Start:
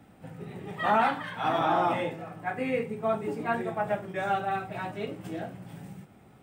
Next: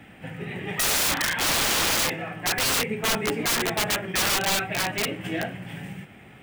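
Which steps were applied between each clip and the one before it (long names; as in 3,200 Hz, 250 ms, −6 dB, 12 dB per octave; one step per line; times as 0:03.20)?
flat-topped bell 2,300 Hz +11 dB 1.2 octaves
wrap-around overflow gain 24 dB
level +6 dB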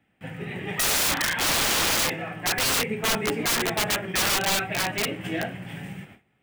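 noise gate with hold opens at −36 dBFS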